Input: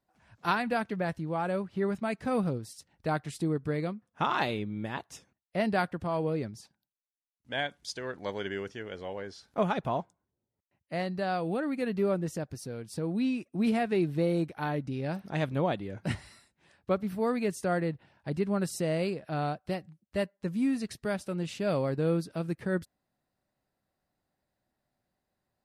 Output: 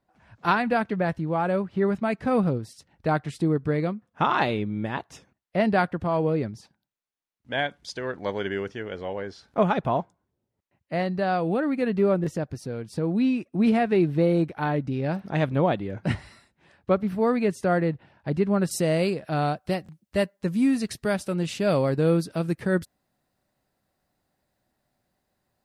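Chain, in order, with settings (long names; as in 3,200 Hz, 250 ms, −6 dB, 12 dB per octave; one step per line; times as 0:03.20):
high-shelf EQ 5,000 Hz −11.5 dB, from 0:18.71 +2 dB
buffer that repeats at 0:12.22/0:19.84, samples 1,024, times 1
level +6.5 dB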